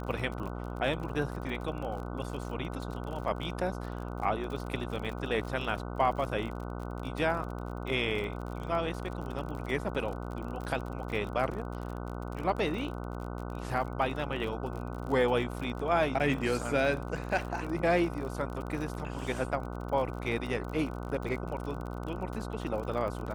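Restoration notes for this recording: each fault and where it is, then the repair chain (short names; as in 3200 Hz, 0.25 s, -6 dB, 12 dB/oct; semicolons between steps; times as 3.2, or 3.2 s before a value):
buzz 60 Hz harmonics 25 -38 dBFS
crackle 43/s -37 dBFS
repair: de-click; de-hum 60 Hz, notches 25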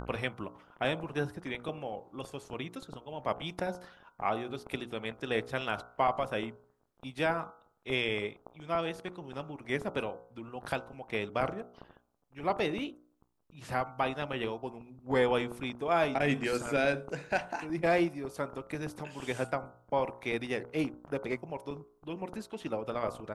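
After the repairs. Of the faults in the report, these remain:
none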